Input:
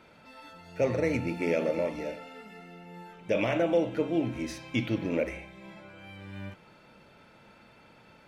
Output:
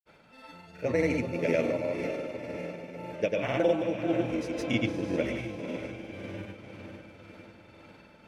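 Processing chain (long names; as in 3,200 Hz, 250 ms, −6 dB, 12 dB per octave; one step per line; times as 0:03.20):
feedback delay with all-pass diffusion 508 ms, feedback 56%, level −7 dB
granular cloud, pitch spread up and down by 0 semitones
amplitude tremolo 1.9 Hz, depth 36%
level +2 dB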